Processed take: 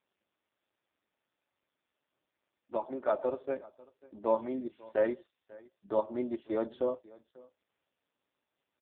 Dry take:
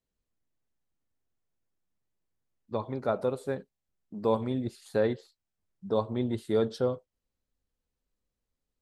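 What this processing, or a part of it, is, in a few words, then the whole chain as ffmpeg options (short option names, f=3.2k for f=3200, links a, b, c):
satellite phone: -af "highpass=380,lowpass=3k,aecho=1:1:3.3:0.73,aecho=1:1:544:0.075" -ar 8000 -c:a libopencore_amrnb -b:a 5150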